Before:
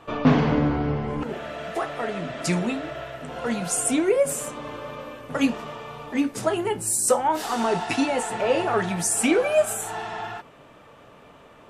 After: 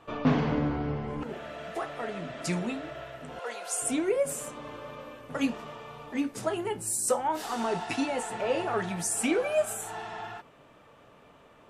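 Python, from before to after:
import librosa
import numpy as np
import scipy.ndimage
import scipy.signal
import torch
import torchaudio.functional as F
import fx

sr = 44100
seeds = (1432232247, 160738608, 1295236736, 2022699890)

y = fx.highpass(x, sr, hz=440.0, slope=24, at=(3.39, 3.82))
y = F.gain(torch.from_numpy(y), -6.5).numpy()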